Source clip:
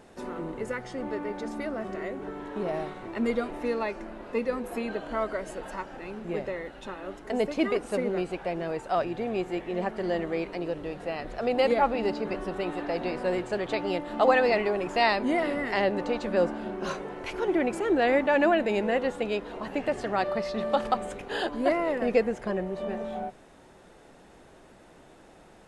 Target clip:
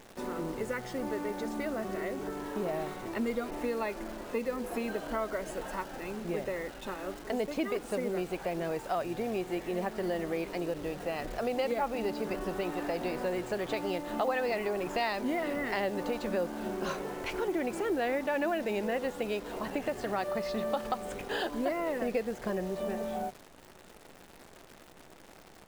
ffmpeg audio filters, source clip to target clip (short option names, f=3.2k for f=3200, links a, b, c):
-af "acompressor=threshold=-30dB:ratio=3,acrusher=bits=9:dc=4:mix=0:aa=0.000001"